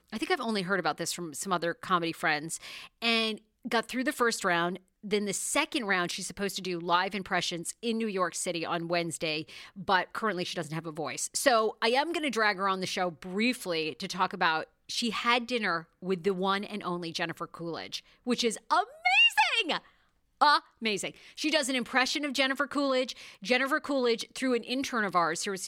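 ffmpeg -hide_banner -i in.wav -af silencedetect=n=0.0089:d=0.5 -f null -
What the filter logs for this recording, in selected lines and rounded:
silence_start: 19.79
silence_end: 20.41 | silence_duration: 0.63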